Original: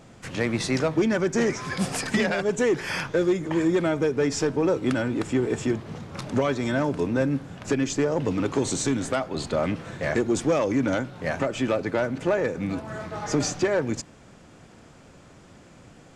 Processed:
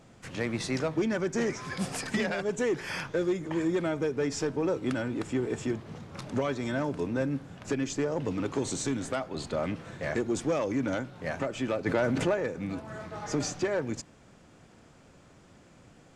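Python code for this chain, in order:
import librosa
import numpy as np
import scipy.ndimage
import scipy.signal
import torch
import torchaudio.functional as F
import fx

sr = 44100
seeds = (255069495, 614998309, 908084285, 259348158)

y = fx.env_flatten(x, sr, amount_pct=70, at=(11.85, 12.33), fade=0.02)
y = y * 10.0 ** (-6.0 / 20.0)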